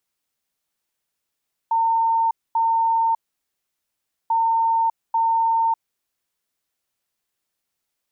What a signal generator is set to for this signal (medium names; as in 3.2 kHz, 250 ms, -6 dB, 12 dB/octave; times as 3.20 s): beep pattern sine 909 Hz, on 0.60 s, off 0.24 s, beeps 2, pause 1.15 s, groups 2, -16 dBFS